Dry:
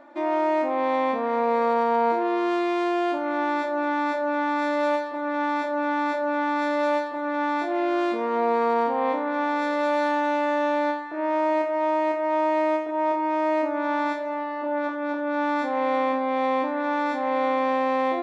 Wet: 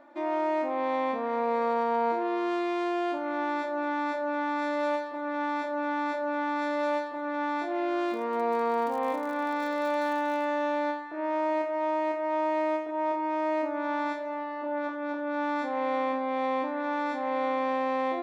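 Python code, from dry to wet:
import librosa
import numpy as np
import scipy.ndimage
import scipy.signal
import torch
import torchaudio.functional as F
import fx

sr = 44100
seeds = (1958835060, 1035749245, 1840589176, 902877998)

y = fx.dmg_crackle(x, sr, seeds[0], per_s=75.0, level_db=-31.0, at=(8.08, 10.45), fade=0.02)
y = y * librosa.db_to_amplitude(-5.0)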